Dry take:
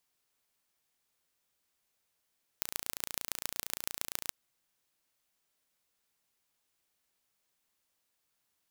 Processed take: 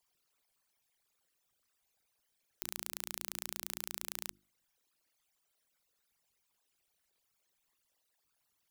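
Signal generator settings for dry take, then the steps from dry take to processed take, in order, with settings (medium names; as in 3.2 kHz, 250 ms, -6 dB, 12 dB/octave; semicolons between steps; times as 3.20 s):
pulse train 28.7 per s, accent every 4, -4.5 dBFS 1.69 s
resonances exaggerated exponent 3; hum notches 50/100/150/200/250/300/350 Hz; peak limiter -11 dBFS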